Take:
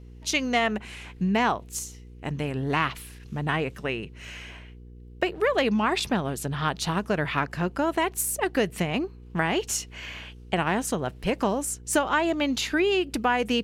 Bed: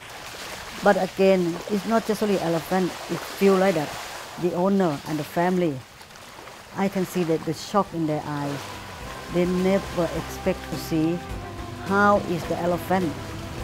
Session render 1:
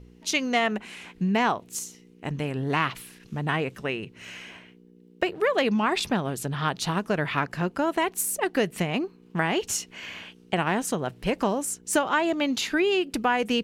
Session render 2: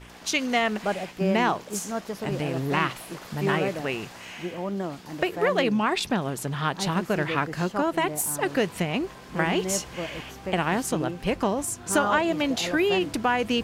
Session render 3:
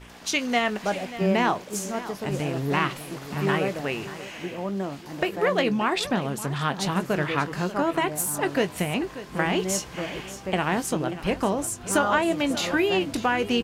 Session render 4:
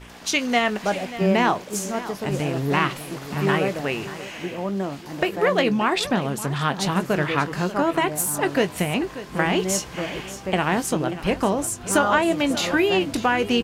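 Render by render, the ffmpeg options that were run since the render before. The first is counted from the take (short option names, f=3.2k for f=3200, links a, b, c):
-af "bandreject=f=60:t=h:w=4,bandreject=f=120:t=h:w=4"
-filter_complex "[1:a]volume=-9.5dB[a];[0:a][a]amix=inputs=2:normalize=0"
-filter_complex "[0:a]asplit=2[a][b];[b]adelay=21,volume=-13dB[c];[a][c]amix=inputs=2:normalize=0,aecho=1:1:586:0.188"
-af "volume=3dB"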